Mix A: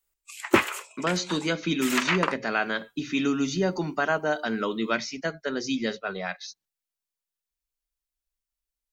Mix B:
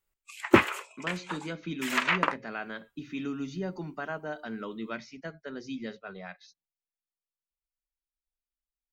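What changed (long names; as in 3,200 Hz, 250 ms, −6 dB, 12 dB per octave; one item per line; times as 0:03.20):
speech −11.0 dB
master: add bass and treble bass +5 dB, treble −8 dB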